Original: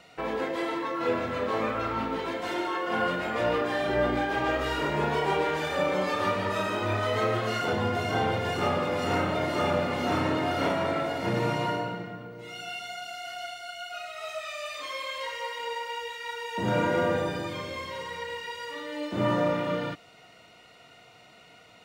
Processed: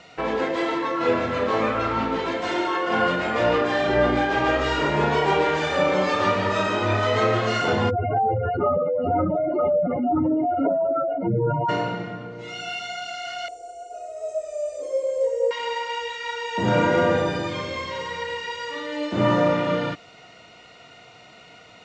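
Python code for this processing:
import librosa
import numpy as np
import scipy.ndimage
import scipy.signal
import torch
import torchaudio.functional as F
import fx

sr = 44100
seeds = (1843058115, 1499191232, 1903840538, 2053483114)

y = fx.spec_expand(x, sr, power=3.9, at=(7.89, 11.68), fade=0.02)
y = fx.curve_eq(y, sr, hz=(100.0, 160.0, 260.0, 500.0, 780.0, 1100.0, 1800.0, 3800.0, 8400.0), db=(0, -25, -4, 15, -6, -23, -24, -27, 5), at=(13.48, 15.51))
y = scipy.signal.sosfilt(scipy.signal.butter(8, 7600.0, 'lowpass', fs=sr, output='sos'), y)
y = F.gain(torch.from_numpy(y), 6.0).numpy()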